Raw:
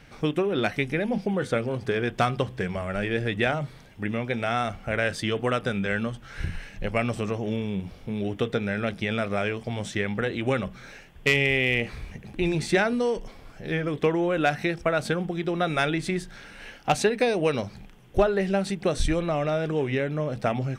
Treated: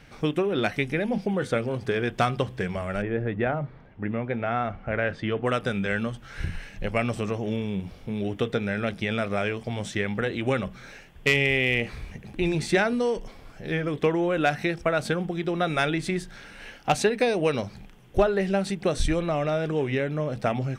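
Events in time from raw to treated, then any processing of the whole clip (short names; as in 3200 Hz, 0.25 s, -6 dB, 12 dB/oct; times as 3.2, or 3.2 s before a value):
3.01–5.45 LPF 1300 Hz -> 2300 Hz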